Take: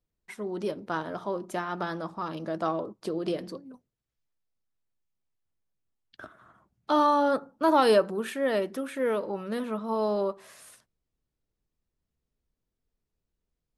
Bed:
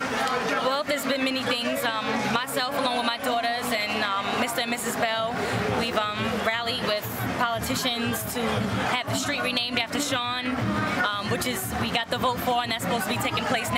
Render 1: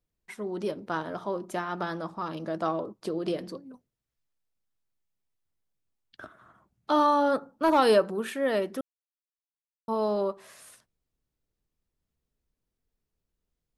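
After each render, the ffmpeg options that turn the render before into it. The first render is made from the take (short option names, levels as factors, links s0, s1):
-filter_complex "[0:a]asettb=1/sr,asplit=3[s0][s1][s2];[s0]atrim=end=7.004[s3];[s1]atrim=start=7:end=7.79,asetpts=PTS-STARTPTS,afade=t=in:d=0.004:c=qsin,afade=t=out:st=0.786:d=0.004:c=qsin,asoftclip=type=hard:threshold=0.168[s4];[s2]atrim=start=7.786[s5];[s3][s4]acrossfade=d=0.004:c1=hsin:c2=qsin[s6];[s6][s5]acrossfade=d=0.004:c1=qsin:c2=hsin,asplit=3[s7][s8][s9];[s7]atrim=end=8.81,asetpts=PTS-STARTPTS,afade=t=out:st=8.806:d=0.004:c=hsin[s10];[s8]atrim=start=8.81:end=9.88,asetpts=PTS-STARTPTS,volume=0[s11];[s9]atrim=start=9.88,asetpts=PTS-STARTPTS,afade=t=in:d=0.004:c=hsin[s12];[s10][s11][s12]concat=n=3:v=0:a=1"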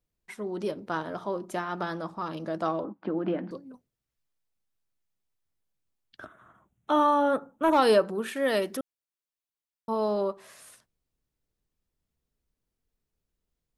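-filter_complex "[0:a]asettb=1/sr,asplit=3[s0][s1][s2];[s0]atrim=end=2.844[s3];[s1]atrim=start=2.84:end=3.51,asetpts=PTS-STARTPTS,afade=t=in:d=0.004:c=qsin,afade=t=out:st=0.666:d=0.004:c=qsin,highpass=120,equalizer=f=130:t=q:w=4:g=-7,equalizer=f=190:t=q:w=4:g=6,equalizer=f=280:t=q:w=4:g=10,equalizer=f=420:t=q:w=4:g=-6,equalizer=f=840:t=q:w=4:g=8,equalizer=f=1500:t=q:w=4:g=7,lowpass=f=2500:w=0.5412,lowpass=f=2500:w=1.3066[s4];[s2]atrim=start=3.506[s5];[s3][s4]acrossfade=d=0.004:c1=hsin:c2=qsin[s6];[s6][s5]acrossfade=d=0.004:c1=qsin:c2=hsin,asettb=1/sr,asplit=3[s7][s8][s9];[s7]atrim=end=6.254[s10];[s8]atrim=start=6.25:end=7.73,asetpts=PTS-STARTPTS,afade=t=in:d=0.004:c=qsin,afade=t=out:st=1.476:d=0.004:c=qsin,asuperstop=centerf=4700:order=4:qfactor=2.1[s11];[s9]atrim=start=7.726[s12];[s10][s11]acrossfade=d=0.004:c1=hsin:c2=qsin[s13];[s13][s12]acrossfade=d=0.004:c1=qsin:c2=hsin,asettb=1/sr,asplit=3[s14][s15][s16];[s14]atrim=end=8.364[s17];[s15]atrim=start=8.36:end=8.77,asetpts=PTS-STARTPTS,afade=t=in:d=0.004:c=qsin,afade=t=out:st=0.406:d=0.004:c=qsin,highshelf=f=2800:g=9.5[s18];[s16]atrim=start=8.766[s19];[s17][s18]acrossfade=d=0.004:c1=hsin:c2=qsin[s20];[s20][s19]acrossfade=d=0.004:c1=qsin:c2=hsin"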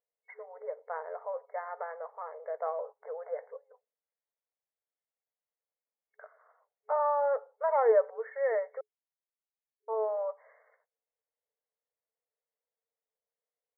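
-af "afftfilt=real='re*between(b*sr/4096,430,2200)':imag='im*between(b*sr/4096,430,2200)':win_size=4096:overlap=0.75,equalizer=f=1400:t=o:w=1.3:g=-10"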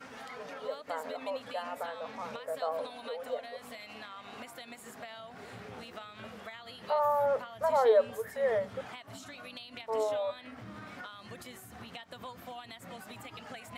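-filter_complex "[1:a]volume=0.0944[s0];[0:a][s0]amix=inputs=2:normalize=0"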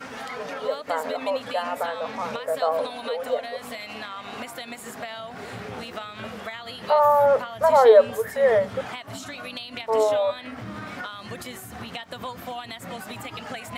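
-af "volume=3.35"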